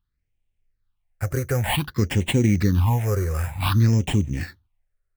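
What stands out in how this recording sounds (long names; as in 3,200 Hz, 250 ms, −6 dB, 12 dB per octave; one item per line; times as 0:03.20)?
aliases and images of a low sample rate 6,200 Hz, jitter 0%
phaser sweep stages 6, 0.54 Hz, lowest notch 230–1,300 Hz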